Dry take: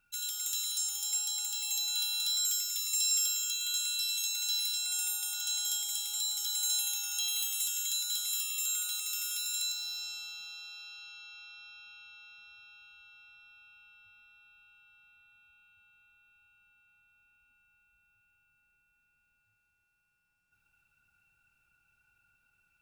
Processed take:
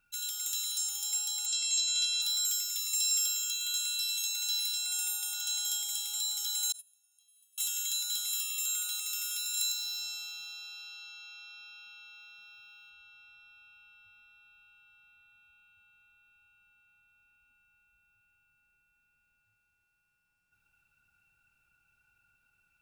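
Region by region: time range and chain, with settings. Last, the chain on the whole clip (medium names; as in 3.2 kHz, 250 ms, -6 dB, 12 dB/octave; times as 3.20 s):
1.46–2.22 s: low-pass 6.7 kHz 24 dB/octave + treble shelf 4.6 kHz +10 dB + doubling 21 ms -3.5 dB
6.72–7.58 s: gate -28 dBFS, range -40 dB + peaking EQ 9.8 kHz +14 dB 0.43 oct
9.57–12.90 s: high-pass 99 Hz 24 dB/octave + treble shelf 7.7 kHz +7 dB
whole clip: none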